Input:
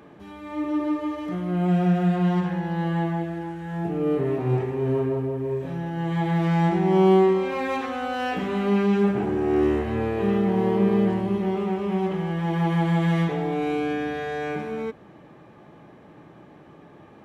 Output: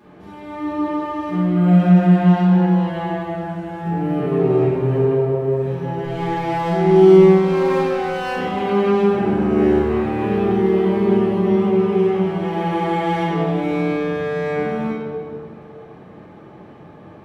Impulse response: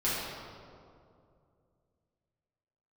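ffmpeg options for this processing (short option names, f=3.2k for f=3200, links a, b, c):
-filter_complex "[0:a]asettb=1/sr,asplit=3[a][b][c];[a]atrim=end=6.044[d];[b]atrim=start=6.04:end=8.36,asetpts=PTS-STARTPTS,afade=t=in:d=0.004:c=qsin,afade=t=out:st=2.316:d=0.004:c=qsin,aeval=exprs='sgn(val(0))*max(abs(val(0))-0.0141,0)':c=same[e];[c]atrim=start=8.356[f];[d][e]acrossfade=d=0.004:c1=hsin:c2=qsin[g];[g][f]acrossfade=d=0.004:c1=qsin:c2=hsin[h];[1:a]atrim=start_sample=2205[i];[h][i]afir=irnorm=-1:irlink=0,volume=-4dB"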